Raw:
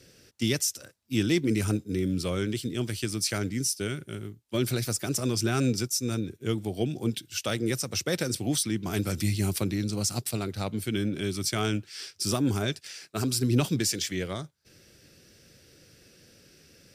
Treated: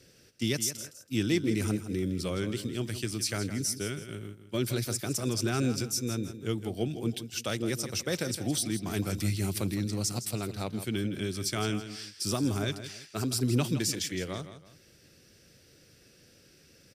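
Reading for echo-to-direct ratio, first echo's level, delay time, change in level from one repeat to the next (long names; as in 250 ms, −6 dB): −11.0 dB, −11.5 dB, 163 ms, −9.5 dB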